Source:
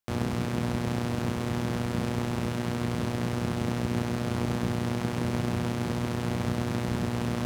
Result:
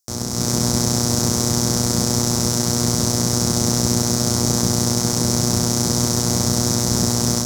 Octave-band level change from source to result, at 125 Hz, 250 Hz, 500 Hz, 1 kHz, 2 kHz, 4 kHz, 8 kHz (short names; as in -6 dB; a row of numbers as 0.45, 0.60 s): +8.5, +8.5, +8.0, +7.5, +3.5, +19.0, +27.5 dB